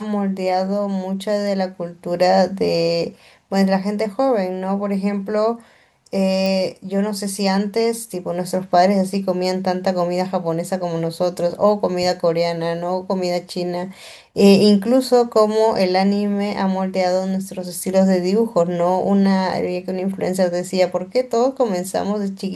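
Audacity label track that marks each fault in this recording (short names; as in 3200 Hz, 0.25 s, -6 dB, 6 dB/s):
6.460000	6.460000	pop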